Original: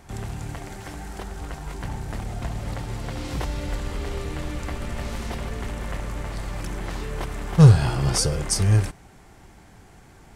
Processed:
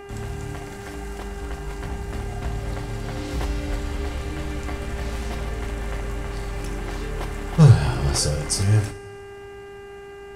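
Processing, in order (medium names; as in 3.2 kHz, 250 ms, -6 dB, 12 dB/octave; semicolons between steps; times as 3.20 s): mains buzz 400 Hz, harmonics 7, -37 dBFS -7 dB/octave; on a send: reverberation, pre-delay 3 ms, DRR 5 dB; on the sum: trim -1 dB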